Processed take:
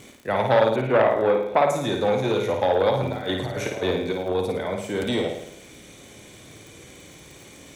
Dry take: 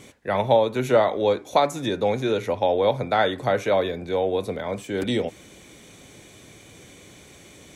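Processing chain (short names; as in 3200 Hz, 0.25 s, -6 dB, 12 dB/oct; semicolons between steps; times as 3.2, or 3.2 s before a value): 0.76–1.67 LPF 2600 Hz 24 dB/oct; 2.95–4.35 negative-ratio compressor -26 dBFS, ratio -0.5; crackle 38/s -36 dBFS; flutter echo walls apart 9.3 m, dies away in 0.7 s; core saturation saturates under 910 Hz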